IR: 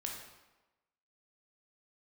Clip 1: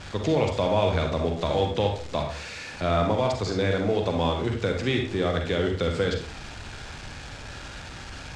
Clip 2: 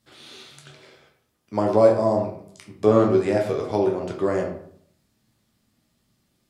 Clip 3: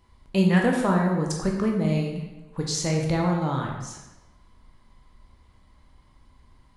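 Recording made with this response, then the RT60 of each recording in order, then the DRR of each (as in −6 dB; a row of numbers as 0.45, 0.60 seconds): 3; 0.45, 0.60, 1.1 seconds; 2.0, 0.0, −0.5 decibels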